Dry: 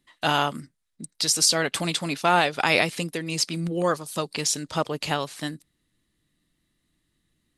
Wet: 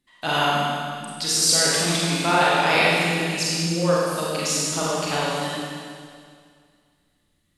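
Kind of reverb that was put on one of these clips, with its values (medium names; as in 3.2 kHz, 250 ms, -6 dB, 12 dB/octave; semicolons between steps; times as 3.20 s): Schroeder reverb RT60 2.1 s, combs from 32 ms, DRR -7 dB; trim -4 dB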